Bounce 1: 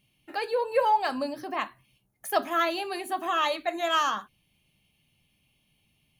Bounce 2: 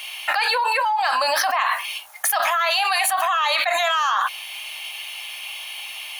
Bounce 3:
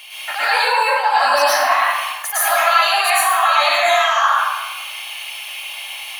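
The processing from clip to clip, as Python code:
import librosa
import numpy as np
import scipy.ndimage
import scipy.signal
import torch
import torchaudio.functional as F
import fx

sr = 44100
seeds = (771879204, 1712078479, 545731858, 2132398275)

y1 = scipy.signal.sosfilt(scipy.signal.cheby2(4, 40, 390.0, 'highpass', fs=sr, output='sos'), x)
y1 = fx.high_shelf(y1, sr, hz=7000.0, db=-5.0)
y1 = fx.env_flatten(y1, sr, amount_pct=100)
y2 = fx.rev_plate(y1, sr, seeds[0], rt60_s=1.2, hf_ratio=0.6, predelay_ms=95, drr_db=-10.0)
y2 = F.gain(torch.from_numpy(y2), -5.0).numpy()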